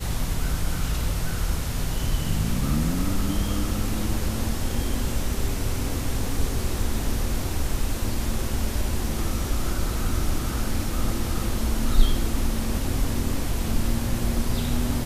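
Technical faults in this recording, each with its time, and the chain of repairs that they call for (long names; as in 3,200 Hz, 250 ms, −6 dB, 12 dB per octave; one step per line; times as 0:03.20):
0:03.48: drop-out 2.2 ms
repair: repair the gap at 0:03.48, 2.2 ms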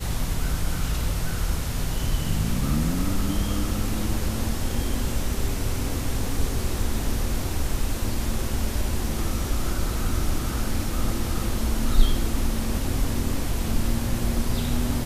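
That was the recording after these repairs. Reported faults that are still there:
none of them is left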